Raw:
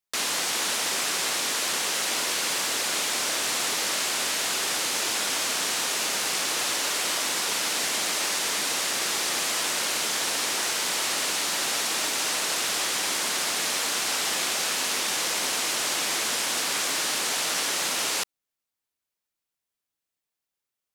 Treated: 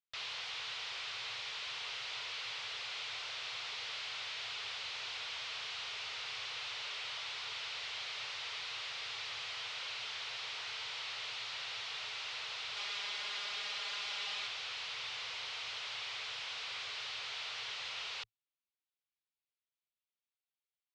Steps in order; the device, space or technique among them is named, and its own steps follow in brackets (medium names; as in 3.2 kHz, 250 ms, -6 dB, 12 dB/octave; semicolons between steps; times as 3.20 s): scooped metal amplifier (valve stage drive 33 dB, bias 0.8; cabinet simulation 90–3900 Hz, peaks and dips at 110 Hz +8 dB, 200 Hz -7 dB, 430 Hz +7 dB, 1.7 kHz -5 dB; amplifier tone stack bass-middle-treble 10-0-10); 12.76–14.47 s: comb 4.9 ms, depth 83%; trim +1.5 dB